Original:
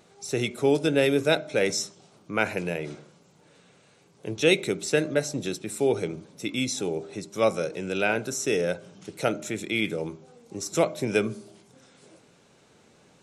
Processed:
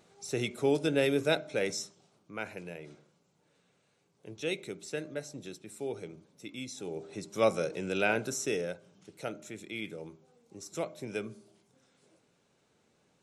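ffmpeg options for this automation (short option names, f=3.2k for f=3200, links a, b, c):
-af "volume=4.5dB,afade=t=out:st=1.3:d=1.01:silence=0.398107,afade=t=in:st=6.76:d=0.57:silence=0.316228,afade=t=out:st=8.27:d=0.51:silence=0.354813"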